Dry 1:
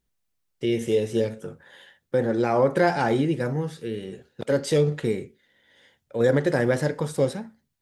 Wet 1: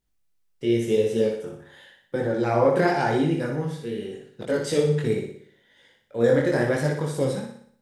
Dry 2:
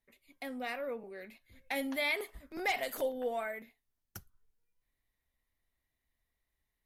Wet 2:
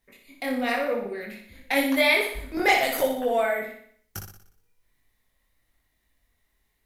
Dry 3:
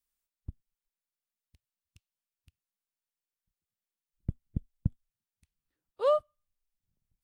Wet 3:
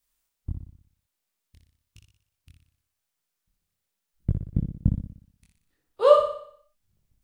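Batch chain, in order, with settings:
chorus voices 2, 0.94 Hz, delay 22 ms, depth 3.7 ms; flutter echo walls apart 10.3 m, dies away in 0.6 s; match loudness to -24 LUFS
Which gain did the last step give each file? +2.0, +14.5, +12.0 dB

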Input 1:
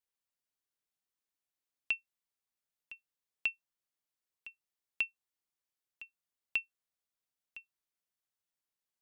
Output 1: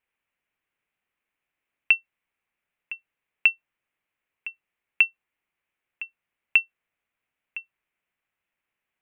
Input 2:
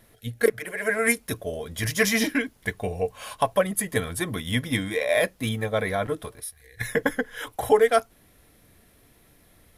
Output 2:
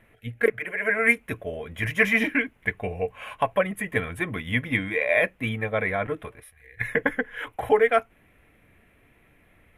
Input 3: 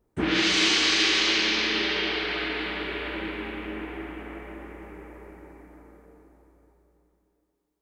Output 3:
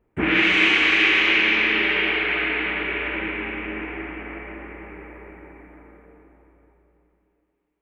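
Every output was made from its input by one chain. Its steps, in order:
resonant high shelf 3400 Hz -12 dB, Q 3; normalise peaks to -6 dBFS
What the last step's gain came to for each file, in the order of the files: +10.0, -1.5, +2.5 dB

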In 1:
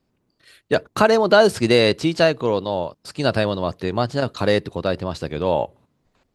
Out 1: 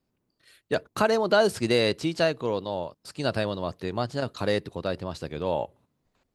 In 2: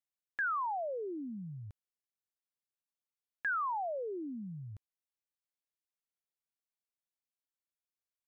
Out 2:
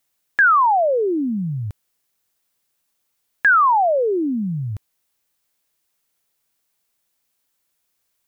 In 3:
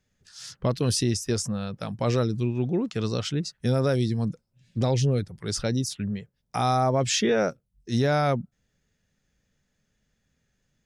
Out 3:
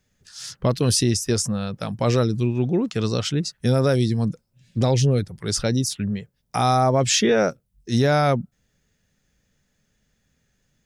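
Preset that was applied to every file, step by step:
high shelf 8900 Hz +5.5 dB; normalise peaks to -9 dBFS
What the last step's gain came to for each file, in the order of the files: -7.5, +19.5, +4.5 dB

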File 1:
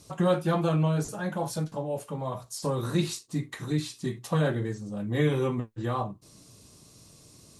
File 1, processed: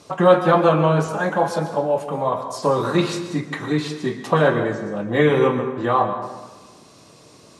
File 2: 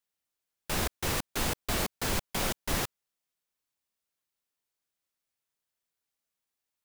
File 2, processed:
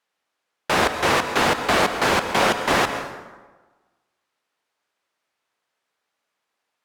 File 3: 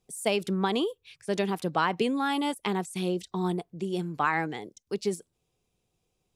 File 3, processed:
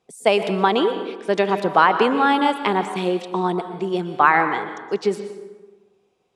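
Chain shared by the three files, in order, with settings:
band-pass 980 Hz, Q 0.53; plate-style reverb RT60 1.3 s, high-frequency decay 0.6×, pre-delay 0.105 s, DRR 8.5 dB; match loudness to -20 LUFS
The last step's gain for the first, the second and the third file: +13.5, +16.5, +12.0 dB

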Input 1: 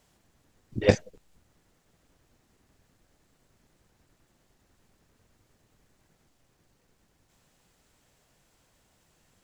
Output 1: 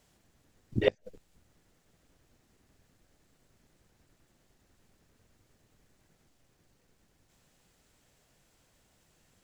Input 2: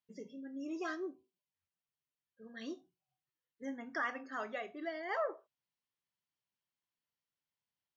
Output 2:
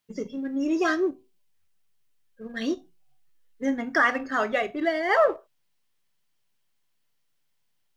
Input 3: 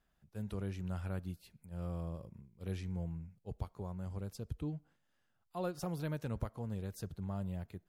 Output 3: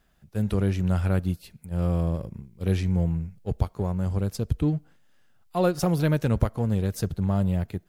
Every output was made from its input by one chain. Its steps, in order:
flipped gate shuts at -12 dBFS, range -34 dB; in parallel at -5.5 dB: backlash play -45.5 dBFS; on the sum: bell 1000 Hz -2.5 dB 0.77 oct; normalise peaks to -9 dBFS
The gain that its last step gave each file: -1.0, +13.0, +12.5 dB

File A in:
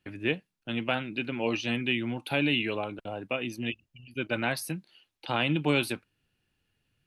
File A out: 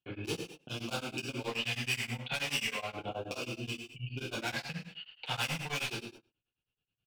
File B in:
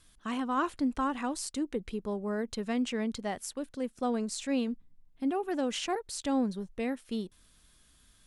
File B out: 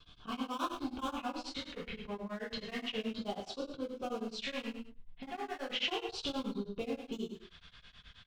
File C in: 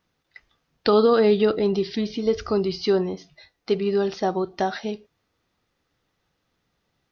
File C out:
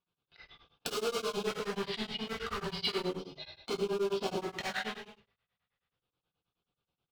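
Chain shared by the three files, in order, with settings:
gate with hold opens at -57 dBFS; LPF 3400 Hz 24 dB/oct; overloaded stage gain 27.5 dB; compressor 4:1, threshold -44 dBFS; LFO notch square 0.34 Hz 330–1900 Hz; high shelf 2100 Hz +11 dB; outdoor echo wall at 22 m, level -25 dB; non-linear reverb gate 0.27 s falling, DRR -4 dB; beating tremolo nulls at 9.4 Hz; gain +4 dB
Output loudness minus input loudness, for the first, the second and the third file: -6.0, -6.0, -13.0 LU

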